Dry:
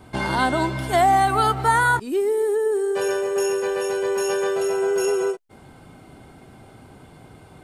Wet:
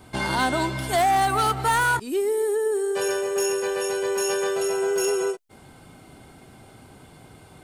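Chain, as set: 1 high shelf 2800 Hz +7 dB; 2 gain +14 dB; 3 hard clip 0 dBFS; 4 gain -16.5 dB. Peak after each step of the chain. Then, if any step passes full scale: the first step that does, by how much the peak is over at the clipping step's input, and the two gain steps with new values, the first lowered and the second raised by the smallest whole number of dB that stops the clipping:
-6.0, +8.0, 0.0, -16.5 dBFS; step 2, 8.0 dB; step 2 +6 dB, step 4 -8.5 dB

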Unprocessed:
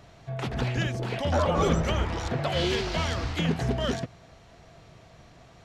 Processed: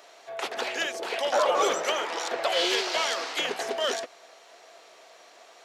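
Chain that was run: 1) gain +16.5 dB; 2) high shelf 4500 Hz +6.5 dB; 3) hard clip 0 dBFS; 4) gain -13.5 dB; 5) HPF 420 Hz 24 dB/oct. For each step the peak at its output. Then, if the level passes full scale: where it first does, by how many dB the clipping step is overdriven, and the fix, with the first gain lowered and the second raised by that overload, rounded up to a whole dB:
+4.0, +4.5, 0.0, -13.5, -12.0 dBFS; step 1, 4.5 dB; step 1 +11.5 dB, step 4 -8.5 dB

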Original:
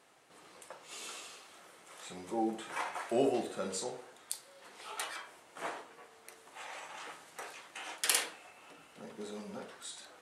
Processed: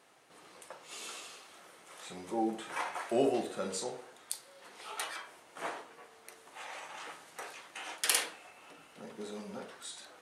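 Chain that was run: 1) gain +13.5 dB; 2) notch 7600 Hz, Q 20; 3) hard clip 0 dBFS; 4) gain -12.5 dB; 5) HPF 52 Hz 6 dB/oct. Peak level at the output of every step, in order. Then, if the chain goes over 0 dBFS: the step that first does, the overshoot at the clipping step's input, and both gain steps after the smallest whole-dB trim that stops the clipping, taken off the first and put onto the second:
+3.5, +3.5, 0.0, -12.5, -12.5 dBFS; step 1, 3.5 dB; step 1 +9.5 dB, step 4 -8.5 dB

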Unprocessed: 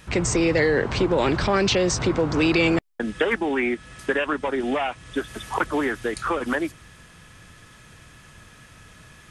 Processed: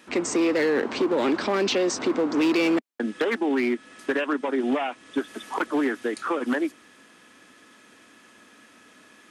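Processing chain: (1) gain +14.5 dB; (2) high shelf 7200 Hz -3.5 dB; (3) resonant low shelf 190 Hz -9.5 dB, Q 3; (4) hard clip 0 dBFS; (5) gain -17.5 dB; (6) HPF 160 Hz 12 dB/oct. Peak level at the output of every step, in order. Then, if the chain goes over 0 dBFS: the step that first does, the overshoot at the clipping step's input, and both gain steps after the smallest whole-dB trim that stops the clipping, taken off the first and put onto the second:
+5.5, +5.5, +8.0, 0.0, -17.5, -12.0 dBFS; step 1, 8.0 dB; step 1 +6.5 dB, step 5 -9.5 dB

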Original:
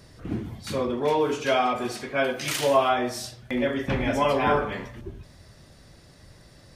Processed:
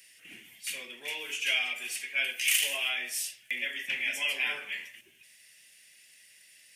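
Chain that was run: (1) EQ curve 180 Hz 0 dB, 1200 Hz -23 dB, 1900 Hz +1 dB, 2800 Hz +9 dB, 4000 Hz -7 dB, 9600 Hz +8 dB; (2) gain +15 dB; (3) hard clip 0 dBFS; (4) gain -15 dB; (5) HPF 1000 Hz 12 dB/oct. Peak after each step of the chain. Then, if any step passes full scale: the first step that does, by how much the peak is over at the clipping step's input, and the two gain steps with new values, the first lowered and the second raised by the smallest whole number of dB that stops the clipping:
-10.5, +4.5, 0.0, -15.0, -13.0 dBFS; step 2, 4.5 dB; step 2 +10 dB, step 4 -10 dB

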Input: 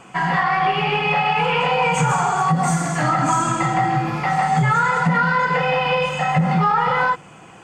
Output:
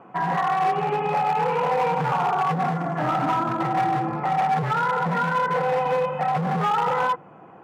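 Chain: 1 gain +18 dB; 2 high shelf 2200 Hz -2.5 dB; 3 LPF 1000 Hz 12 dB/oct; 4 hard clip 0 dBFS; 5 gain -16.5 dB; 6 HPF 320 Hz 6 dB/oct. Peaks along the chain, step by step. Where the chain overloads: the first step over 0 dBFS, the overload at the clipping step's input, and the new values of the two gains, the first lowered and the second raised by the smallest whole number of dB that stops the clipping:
+10.5, +10.5, +10.0, 0.0, -16.5, -13.5 dBFS; step 1, 10.0 dB; step 1 +8 dB, step 5 -6.5 dB

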